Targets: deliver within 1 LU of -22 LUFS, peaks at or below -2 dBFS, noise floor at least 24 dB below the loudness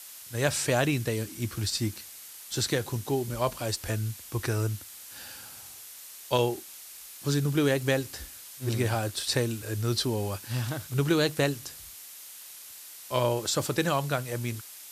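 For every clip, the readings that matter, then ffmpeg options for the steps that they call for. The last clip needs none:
noise floor -46 dBFS; noise floor target -53 dBFS; loudness -29.0 LUFS; peak level -9.5 dBFS; loudness target -22.0 LUFS
-> -af "afftdn=nr=7:nf=-46"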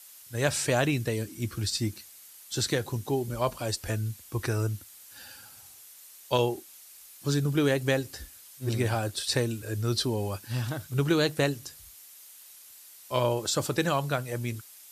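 noise floor -51 dBFS; noise floor target -53 dBFS
-> -af "afftdn=nr=6:nf=-51"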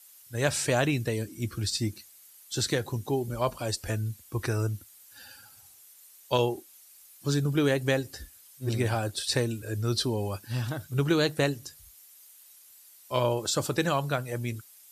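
noise floor -55 dBFS; loudness -29.0 LUFS; peak level -10.0 dBFS; loudness target -22.0 LUFS
-> -af "volume=2.24"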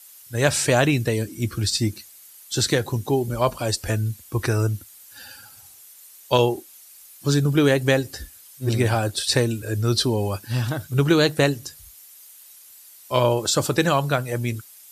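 loudness -22.0 LUFS; peak level -3.0 dBFS; noise floor -48 dBFS

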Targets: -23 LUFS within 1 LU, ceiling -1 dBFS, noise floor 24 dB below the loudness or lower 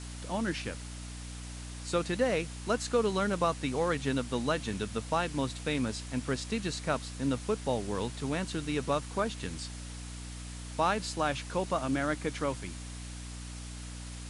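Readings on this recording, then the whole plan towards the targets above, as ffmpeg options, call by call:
hum 60 Hz; highest harmonic 300 Hz; hum level -40 dBFS; noise floor -42 dBFS; noise floor target -58 dBFS; loudness -33.5 LUFS; peak level -14.5 dBFS; loudness target -23.0 LUFS
-> -af "bandreject=f=60:t=h:w=4,bandreject=f=120:t=h:w=4,bandreject=f=180:t=h:w=4,bandreject=f=240:t=h:w=4,bandreject=f=300:t=h:w=4"
-af "afftdn=nr=16:nf=-42"
-af "volume=3.35"

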